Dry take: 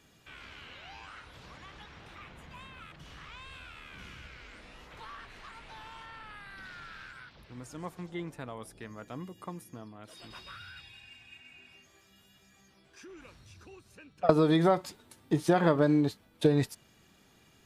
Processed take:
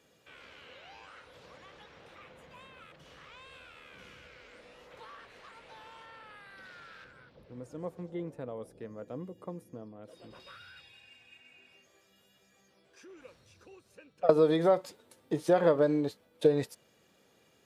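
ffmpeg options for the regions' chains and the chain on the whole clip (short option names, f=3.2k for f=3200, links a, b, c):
-filter_complex "[0:a]asettb=1/sr,asplit=3[a][b][c];[a]atrim=end=7.044[d];[b]atrim=start=7.04:end=10.4,asetpts=PTS-STARTPTS,afade=t=in:d=0.004:c=qsin,afade=t=out:st=3.356:d=0.004:c=qsin,tiltshelf=f=710:g=7,acompressor=mode=upward:threshold=-56dB:ratio=2.5:attack=3.2:release=140:knee=2.83:detection=peak[e];[c]atrim=start=10.396[f];[d][e]acrossfade=d=0.004:c1=hsin:c2=qsin[g];[g][f]acrossfade=d=0.004:c1=qsin:c2=hsin,highpass=f=160:p=1,equalizer=f=510:t=o:w=0.49:g=11.5,volume=-4.5dB"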